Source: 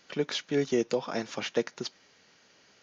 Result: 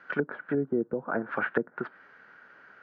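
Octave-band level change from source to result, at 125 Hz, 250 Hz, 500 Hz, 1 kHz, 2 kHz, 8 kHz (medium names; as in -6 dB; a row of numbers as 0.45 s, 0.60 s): +0.5 dB, +1.0 dB, -1.5 dB, +4.5 dB, +6.5 dB, no reading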